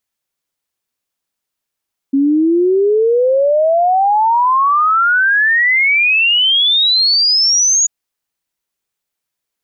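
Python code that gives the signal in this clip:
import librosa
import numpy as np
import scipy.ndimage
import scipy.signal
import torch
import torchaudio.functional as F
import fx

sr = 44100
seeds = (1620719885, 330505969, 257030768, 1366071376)

y = fx.ess(sr, length_s=5.74, from_hz=270.0, to_hz=6800.0, level_db=-9.0)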